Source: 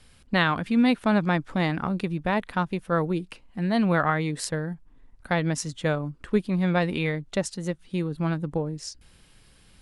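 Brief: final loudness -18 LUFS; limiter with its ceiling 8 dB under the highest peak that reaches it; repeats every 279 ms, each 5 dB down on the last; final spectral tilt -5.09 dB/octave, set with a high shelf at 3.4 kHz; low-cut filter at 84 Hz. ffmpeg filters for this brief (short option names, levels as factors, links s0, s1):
-af "highpass=84,highshelf=f=3400:g=-5,alimiter=limit=0.168:level=0:latency=1,aecho=1:1:279|558|837|1116|1395|1674|1953:0.562|0.315|0.176|0.0988|0.0553|0.031|0.0173,volume=2.66"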